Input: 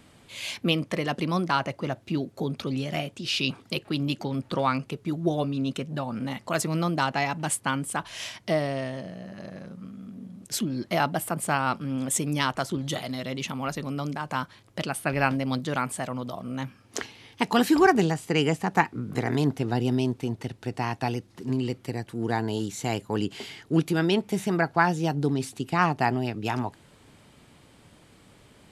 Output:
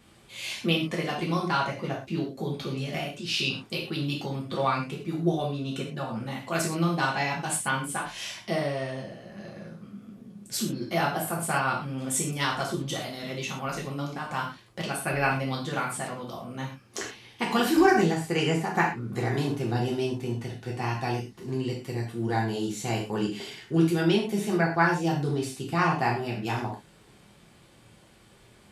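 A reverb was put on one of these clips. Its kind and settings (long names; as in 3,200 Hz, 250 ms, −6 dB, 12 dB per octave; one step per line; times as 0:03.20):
reverb whose tail is shaped and stops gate 150 ms falling, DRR −3.5 dB
level −5.5 dB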